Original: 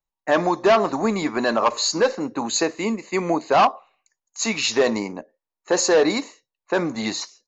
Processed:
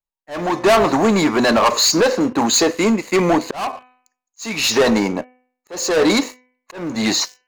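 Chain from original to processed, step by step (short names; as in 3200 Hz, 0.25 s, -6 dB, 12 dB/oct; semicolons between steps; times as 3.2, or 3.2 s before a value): sample leveller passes 3; de-hum 251.6 Hz, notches 12; auto swell 0.411 s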